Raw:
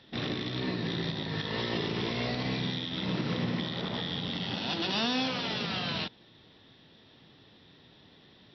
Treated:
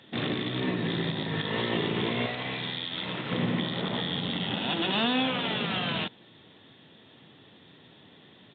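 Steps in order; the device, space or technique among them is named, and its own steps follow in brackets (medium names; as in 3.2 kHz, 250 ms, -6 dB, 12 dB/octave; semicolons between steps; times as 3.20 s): 2.26–3.32 s: peaking EQ 210 Hz -10.5 dB 2.3 oct; Bluetooth headset (high-pass 110 Hz 12 dB/octave; resampled via 8 kHz; trim +4 dB; SBC 64 kbps 16 kHz)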